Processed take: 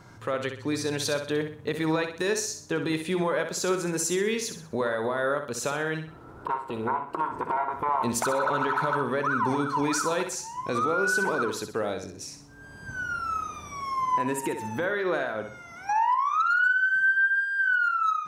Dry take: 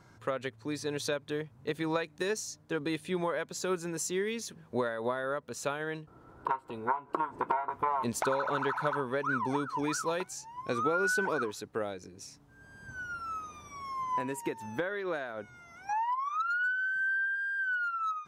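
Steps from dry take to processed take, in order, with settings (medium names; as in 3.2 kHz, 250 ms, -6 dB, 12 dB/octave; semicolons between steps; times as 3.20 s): peak limiter -26 dBFS, peak gain reduction 9 dB; flutter echo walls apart 10.8 m, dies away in 0.47 s; trim +7.5 dB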